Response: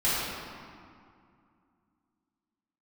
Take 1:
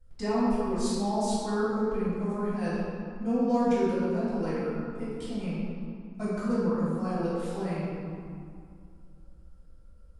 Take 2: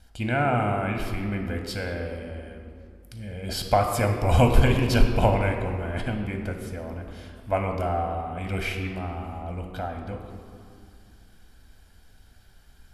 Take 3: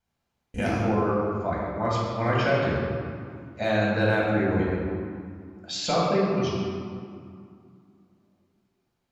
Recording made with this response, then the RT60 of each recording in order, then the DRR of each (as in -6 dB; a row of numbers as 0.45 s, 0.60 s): 1; 2.3 s, 2.3 s, 2.3 s; -12.5 dB, 3.5 dB, -5.5 dB